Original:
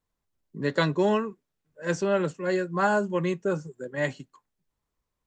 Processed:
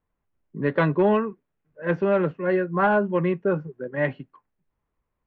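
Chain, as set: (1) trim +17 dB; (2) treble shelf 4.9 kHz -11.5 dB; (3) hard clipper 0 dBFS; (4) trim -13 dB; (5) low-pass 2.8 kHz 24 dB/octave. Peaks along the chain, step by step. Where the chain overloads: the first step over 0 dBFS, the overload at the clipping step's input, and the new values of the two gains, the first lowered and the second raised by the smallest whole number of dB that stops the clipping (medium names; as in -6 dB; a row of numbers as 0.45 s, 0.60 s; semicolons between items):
+6.5 dBFS, +5.5 dBFS, 0.0 dBFS, -13.0 dBFS, -12.0 dBFS; step 1, 5.5 dB; step 1 +11 dB, step 4 -7 dB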